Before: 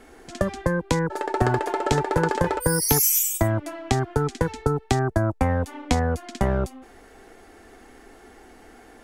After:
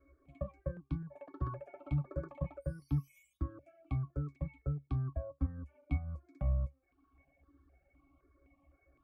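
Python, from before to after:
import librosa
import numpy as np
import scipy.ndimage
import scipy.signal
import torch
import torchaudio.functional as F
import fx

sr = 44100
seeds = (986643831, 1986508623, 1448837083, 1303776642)

y = fx.octave_resonator(x, sr, note='C#', decay_s=0.18)
y = fx.dereverb_blind(y, sr, rt60_s=0.65)
y = fx.phaser_held(y, sr, hz=3.9, low_hz=800.0, high_hz=2400.0)
y = y * 10.0 ** (-1.5 / 20.0)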